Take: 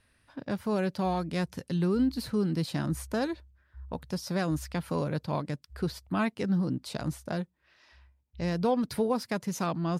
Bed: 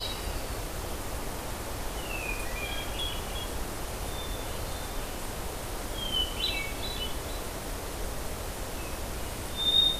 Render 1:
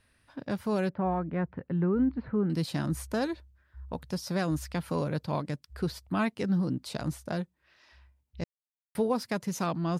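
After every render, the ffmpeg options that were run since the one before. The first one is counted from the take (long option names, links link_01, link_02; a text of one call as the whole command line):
ffmpeg -i in.wav -filter_complex "[0:a]asettb=1/sr,asplit=3[link_01][link_02][link_03];[link_01]atrim=end=0.894[link_04];[link_02]atrim=start=0.89:end=2.5,asetpts=PTS-STARTPTS,afade=type=in:duration=0.004:curve=qsin,afade=type=out:start_time=1.606:duration=0.004:curve=qsin,lowpass=frequency=1900:width=0.5412,lowpass=frequency=1900:width=1.3066[link_05];[link_03]atrim=start=2.496[link_06];[link_04][link_05]acrossfade=duration=0.004:curve1=hsin:curve2=qsin[link_07];[link_07][link_06]acrossfade=duration=0.004:curve1=qsin:curve2=hsin,asplit=3[link_08][link_09][link_10];[link_08]atrim=end=8.44,asetpts=PTS-STARTPTS,afade=type=out:start_time=8.436:duration=0.004:curve=hsin[link_11];[link_09]atrim=start=8.44:end=8.95,asetpts=PTS-STARTPTS,volume=0[link_12];[link_10]atrim=start=8.95,asetpts=PTS-STARTPTS,afade=type=in:duration=0.004:curve=hsin[link_13];[link_11][link_12][link_13]concat=n=3:v=0:a=1" out.wav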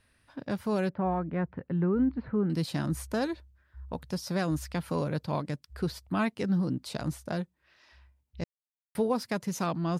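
ffmpeg -i in.wav -af anull out.wav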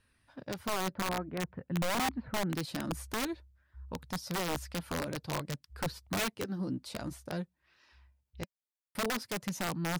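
ffmpeg -i in.wav -af "flanger=delay=0.7:depth=2.8:regen=-60:speed=0.51:shape=sinusoidal,aeval=exprs='(mod(21.1*val(0)+1,2)-1)/21.1':channel_layout=same" out.wav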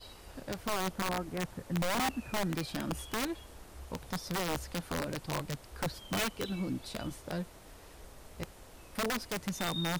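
ffmpeg -i in.wav -i bed.wav -filter_complex "[1:a]volume=-17dB[link_01];[0:a][link_01]amix=inputs=2:normalize=0" out.wav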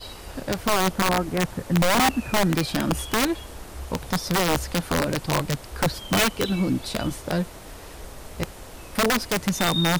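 ffmpeg -i in.wav -af "volume=12dB" out.wav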